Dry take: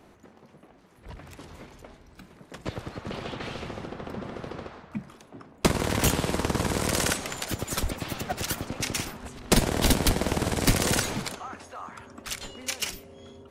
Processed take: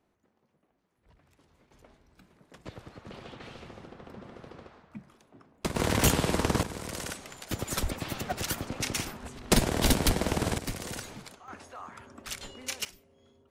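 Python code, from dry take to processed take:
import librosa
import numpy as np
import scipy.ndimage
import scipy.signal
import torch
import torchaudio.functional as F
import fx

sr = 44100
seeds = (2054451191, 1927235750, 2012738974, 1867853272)

y = fx.gain(x, sr, db=fx.steps((0.0, -19.5), (1.71, -10.0), (5.76, 0.0), (6.63, -11.5), (7.51, -2.0), (10.58, -13.5), (11.48, -4.0), (12.85, -15.5)))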